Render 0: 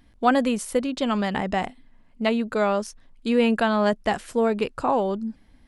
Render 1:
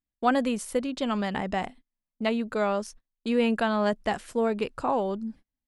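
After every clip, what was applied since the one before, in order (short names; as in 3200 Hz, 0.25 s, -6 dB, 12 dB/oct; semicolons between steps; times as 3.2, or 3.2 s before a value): gate -41 dBFS, range -32 dB; gain -4 dB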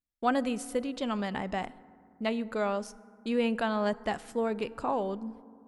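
FDN reverb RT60 2.4 s, low-frequency decay 1.55×, high-frequency decay 0.35×, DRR 17.5 dB; gain -4 dB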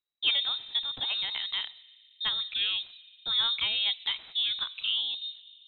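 inverted band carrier 3900 Hz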